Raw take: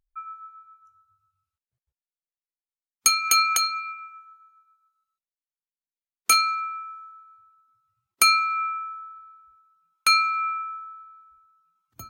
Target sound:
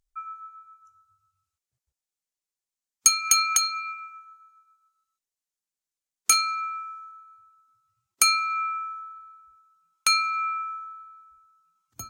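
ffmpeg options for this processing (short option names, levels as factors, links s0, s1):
-filter_complex "[0:a]equalizer=f=7000:w=1.1:g=9,asplit=2[s0][s1];[s1]acompressor=threshold=0.0501:ratio=6,volume=1.26[s2];[s0][s2]amix=inputs=2:normalize=0,volume=0.447"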